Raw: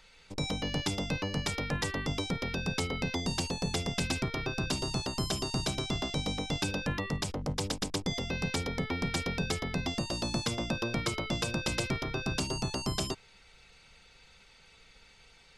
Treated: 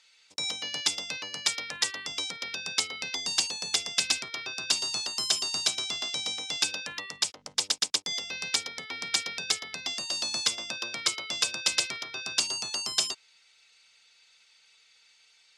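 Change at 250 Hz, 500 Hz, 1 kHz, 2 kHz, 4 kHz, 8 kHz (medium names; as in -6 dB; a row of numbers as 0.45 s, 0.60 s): -15.5 dB, -9.5 dB, -3.0 dB, +2.5 dB, +8.0 dB, +10.0 dB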